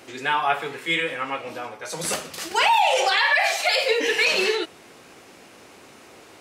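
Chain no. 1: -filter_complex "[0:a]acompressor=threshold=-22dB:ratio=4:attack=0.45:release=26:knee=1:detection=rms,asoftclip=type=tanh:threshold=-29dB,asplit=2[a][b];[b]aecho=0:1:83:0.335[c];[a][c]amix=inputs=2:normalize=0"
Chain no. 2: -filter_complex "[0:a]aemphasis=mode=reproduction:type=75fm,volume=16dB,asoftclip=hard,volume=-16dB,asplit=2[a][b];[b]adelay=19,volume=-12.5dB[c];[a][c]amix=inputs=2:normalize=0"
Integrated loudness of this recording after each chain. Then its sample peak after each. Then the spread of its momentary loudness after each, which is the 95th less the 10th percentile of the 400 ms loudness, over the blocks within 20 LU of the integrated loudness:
-31.5, -23.5 LUFS; -26.5, -14.0 dBFS; 17, 13 LU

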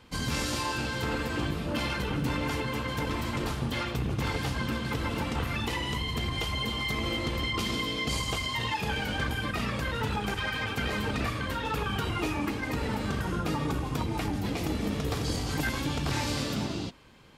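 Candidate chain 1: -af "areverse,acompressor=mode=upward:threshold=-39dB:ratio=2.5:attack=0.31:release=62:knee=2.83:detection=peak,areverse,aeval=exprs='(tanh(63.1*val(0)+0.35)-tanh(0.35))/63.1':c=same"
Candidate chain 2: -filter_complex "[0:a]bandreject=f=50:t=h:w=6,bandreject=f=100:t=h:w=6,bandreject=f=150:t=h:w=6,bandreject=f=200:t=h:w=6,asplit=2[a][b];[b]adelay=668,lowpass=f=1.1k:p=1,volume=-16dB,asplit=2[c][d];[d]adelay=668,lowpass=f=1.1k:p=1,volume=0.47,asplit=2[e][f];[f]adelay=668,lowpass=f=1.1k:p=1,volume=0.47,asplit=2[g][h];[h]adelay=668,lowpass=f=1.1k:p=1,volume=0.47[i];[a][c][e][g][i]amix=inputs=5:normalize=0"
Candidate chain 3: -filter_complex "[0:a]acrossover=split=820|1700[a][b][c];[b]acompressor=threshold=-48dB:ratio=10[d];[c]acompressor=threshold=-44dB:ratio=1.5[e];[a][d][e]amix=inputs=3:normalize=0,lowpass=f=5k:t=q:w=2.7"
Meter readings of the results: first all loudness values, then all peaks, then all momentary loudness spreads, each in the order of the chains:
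-38.0, -31.0, -31.5 LUFS; -33.5, -17.5, -17.5 dBFS; 2, 2, 2 LU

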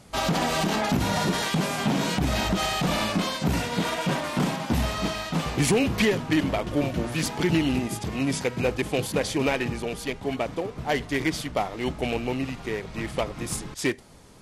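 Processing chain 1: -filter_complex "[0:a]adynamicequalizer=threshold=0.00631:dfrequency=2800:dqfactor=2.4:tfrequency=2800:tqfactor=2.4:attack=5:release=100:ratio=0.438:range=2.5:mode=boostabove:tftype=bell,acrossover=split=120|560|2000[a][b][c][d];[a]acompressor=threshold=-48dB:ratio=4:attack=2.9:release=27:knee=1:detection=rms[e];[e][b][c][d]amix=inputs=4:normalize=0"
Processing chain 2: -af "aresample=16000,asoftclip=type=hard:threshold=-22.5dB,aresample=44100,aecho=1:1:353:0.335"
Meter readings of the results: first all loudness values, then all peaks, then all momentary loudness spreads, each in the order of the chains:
-26.0, -28.0 LUFS; -10.0, -18.0 dBFS; 7, 6 LU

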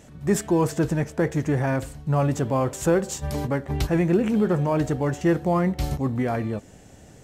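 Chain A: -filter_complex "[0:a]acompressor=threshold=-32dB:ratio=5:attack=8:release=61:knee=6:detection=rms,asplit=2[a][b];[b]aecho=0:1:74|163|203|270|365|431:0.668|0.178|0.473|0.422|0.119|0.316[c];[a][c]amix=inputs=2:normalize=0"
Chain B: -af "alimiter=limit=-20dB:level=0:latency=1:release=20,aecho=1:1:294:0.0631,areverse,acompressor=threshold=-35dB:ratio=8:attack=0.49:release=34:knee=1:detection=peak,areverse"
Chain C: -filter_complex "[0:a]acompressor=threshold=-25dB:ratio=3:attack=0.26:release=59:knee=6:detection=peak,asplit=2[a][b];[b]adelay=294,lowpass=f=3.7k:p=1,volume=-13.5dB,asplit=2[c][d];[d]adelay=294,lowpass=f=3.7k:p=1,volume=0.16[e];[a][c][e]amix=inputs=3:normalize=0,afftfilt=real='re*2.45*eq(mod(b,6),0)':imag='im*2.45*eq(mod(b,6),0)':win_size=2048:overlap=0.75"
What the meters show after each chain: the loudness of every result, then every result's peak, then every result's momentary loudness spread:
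-31.5, -39.5, -32.0 LUFS; -18.5, -29.5, -15.5 dBFS; 4, 3, 7 LU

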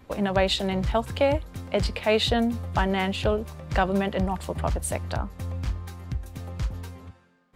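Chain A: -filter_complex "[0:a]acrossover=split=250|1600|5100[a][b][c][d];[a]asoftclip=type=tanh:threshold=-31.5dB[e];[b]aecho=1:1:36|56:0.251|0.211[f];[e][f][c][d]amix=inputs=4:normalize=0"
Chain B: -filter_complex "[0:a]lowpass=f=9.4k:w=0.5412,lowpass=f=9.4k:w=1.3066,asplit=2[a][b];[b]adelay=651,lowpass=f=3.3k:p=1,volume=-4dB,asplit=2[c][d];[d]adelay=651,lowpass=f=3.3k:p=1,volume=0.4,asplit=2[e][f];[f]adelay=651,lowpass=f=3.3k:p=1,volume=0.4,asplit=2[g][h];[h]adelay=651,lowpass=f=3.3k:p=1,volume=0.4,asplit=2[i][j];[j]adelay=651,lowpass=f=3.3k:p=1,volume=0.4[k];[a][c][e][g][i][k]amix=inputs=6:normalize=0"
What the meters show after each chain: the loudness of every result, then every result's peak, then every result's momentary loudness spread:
-27.0, -25.5 LUFS; -10.0, -8.0 dBFS; 15, 10 LU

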